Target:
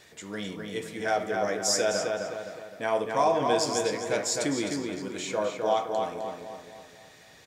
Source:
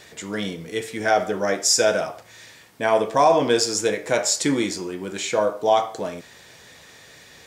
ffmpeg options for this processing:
-filter_complex "[0:a]asplit=2[a][b];[b]adelay=258,lowpass=f=3.5k:p=1,volume=-3.5dB,asplit=2[c][d];[d]adelay=258,lowpass=f=3.5k:p=1,volume=0.48,asplit=2[e][f];[f]adelay=258,lowpass=f=3.5k:p=1,volume=0.48,asplit=2[g][h];[h]adelay=258,lowpass=f=3.5k:p=1,volume=0.48,asplit=2[i][j];[j]adelay=258,lowpass=f=3.5k:p=1,volume=0.48,asplit=2[k][l];[l]adelay=258,lowpass=f=3.5k:p=1,volume=0.48[m];[a][c][e][g][i][k][m]amix=inputs=7:normalize=0,volume=-8dB"

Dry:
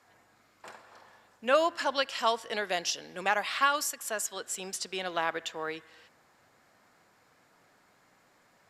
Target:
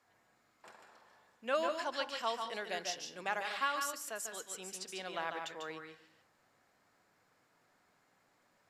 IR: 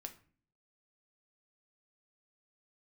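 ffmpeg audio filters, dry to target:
-filter_complex "[0:a]asplit=2[a][b];[1:a]atrim=start_sample=2205,adelay=146[c];[b][c]afir=irnorm=-1:irlink=0,volume=-0.5dB[d];[a][d]amix=inputs=2:normalize=0,volume=-9dB"

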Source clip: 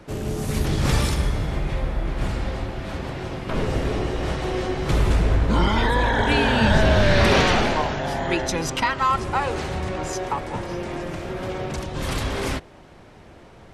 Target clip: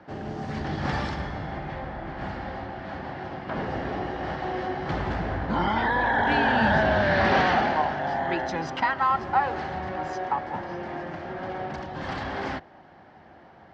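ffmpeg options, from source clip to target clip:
-filter_complex "[0:a]highpass=100,equalizer=f=120:t=q:w=4:g=-6,equalizer=f=440:t=q:w=4:g=-5,equalizer=f=780:t=q:w=4:g=9,equalizer=f=1.7k:t=q:w=4:g=6,equalizer=f=2.5k:t=q:w=4:g=-6,equalizer=f=3.7k:t=q:w=4:g=-6,lowpass=f=4.4k:w=0.5412,lowpass=f=4.4k:w=1.3066,asettb=1/sr,asplit=3[a][b][c];[a]atrim=end=6.254[d];[b]atrim=start=6.25:end=6.84,asetpts=PTS-STARTPTS,afade=t=in:d=0.004:c=qsin,afade=t=out:st=0.586:d=0.004:c=qsin,aeval=exprs='0.596*(cos(1*acos(clip(val(0)/0.596,-1,1)))-cos(1*PI/2))+0.0211*(cos(5*acos(clip(val(0)/0.596,-1,1)))-cos(5*PI/2))':c=same[e];[c]atrim=start=6.836[f];[d][e]acrossfade=d=0.004:c1=hsin:c2=qsin[g];[g][f]acrossfade=d=0.004:c1=qsin:c2=hsin,volume=-4.5dB"

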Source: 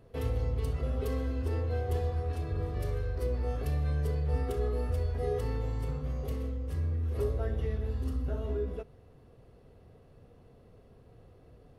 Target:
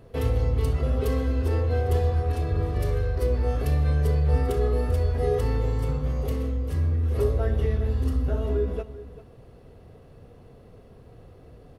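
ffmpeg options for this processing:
-af "aecho=1:1:393:0.168,volume=7.5dB"

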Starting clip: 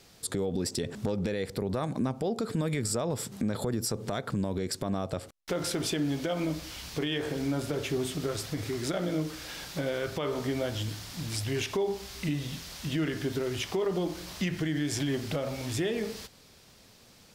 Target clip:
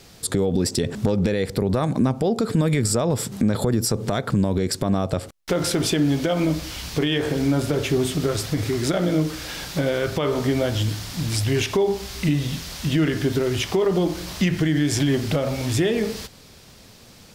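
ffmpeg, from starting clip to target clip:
-af "lowshelf=f=230:g=4,volume=8dB"

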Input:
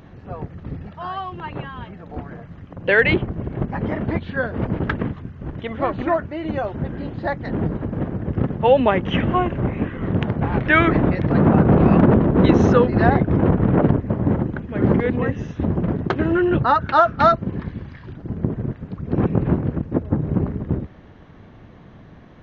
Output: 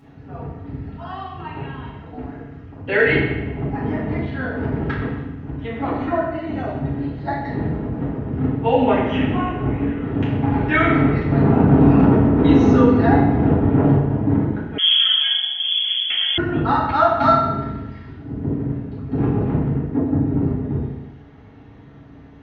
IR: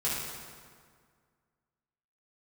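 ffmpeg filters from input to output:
-filter_complex "[1:a]atrim=start_sample=2205,asetrate=83790,aresample=44100[a];[0:a][a]afir=irnorm=-1:irlink=0,asettb=1/sr,asplit=3[b][c][d];[b]atrim=end=14.784[e];[c]atrim=start=14.78:end=16.38,asetpts=PTS-STARTPTS,afade=t=in:d=0.004:c=qsin,afade=t=out:st=1.596:d=0.004:c=qsin,lowpass=f=3k:t=q:w=0.5098,lowpass=f=3k:t=q:w=0.6013,lowpass=f=3k:t=q:w=0.9,lowpass=f=3k:t=q:w=2.563,afreqshift=-3500[f];[d]atrim=start=16.376[g];[e][f]acrossfade=d=0.004:c1=hsin:c2=qsin[h];[h][g]acrossfade=d=0.004:c1=qsin:c2=hsin,volume=-3.5dB"

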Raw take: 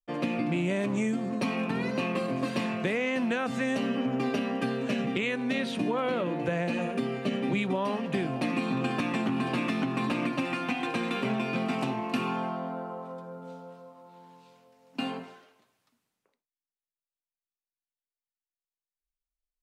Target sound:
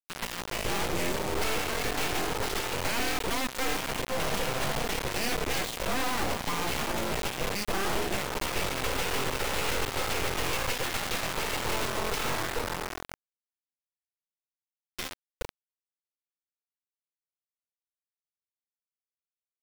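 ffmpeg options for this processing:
-filter_complex "[0:a]acrossover=split=330[a][b];[a]adelay=420[c];[c][b]amix=inputs=2:normalize=0,aeval=exprs='abs(val(0))':c=same,acrusher=bits=4:mix=0:aa=0.000001"

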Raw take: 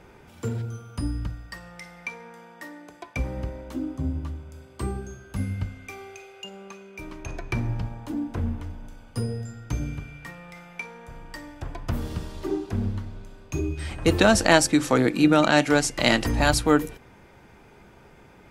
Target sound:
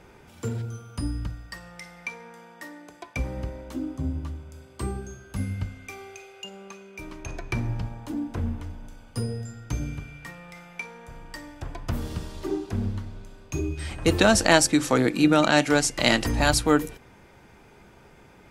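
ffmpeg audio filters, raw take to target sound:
-af "equalizer=f=7.7k:w=0.47:g=3,volume=-1dB"

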